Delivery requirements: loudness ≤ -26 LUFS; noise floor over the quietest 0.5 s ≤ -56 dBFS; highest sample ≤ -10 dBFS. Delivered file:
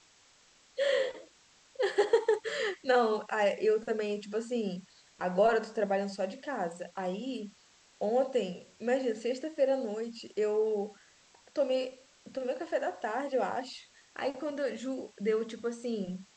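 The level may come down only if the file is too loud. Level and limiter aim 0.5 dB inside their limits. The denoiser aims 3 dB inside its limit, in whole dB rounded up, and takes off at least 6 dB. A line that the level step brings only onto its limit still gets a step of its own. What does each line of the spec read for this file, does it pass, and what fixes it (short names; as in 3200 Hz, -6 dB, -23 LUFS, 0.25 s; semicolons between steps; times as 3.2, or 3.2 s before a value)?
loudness -32.5 LUFS: OK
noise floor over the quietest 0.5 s -63 dBFS: OK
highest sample -14.0 dBFS: OK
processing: none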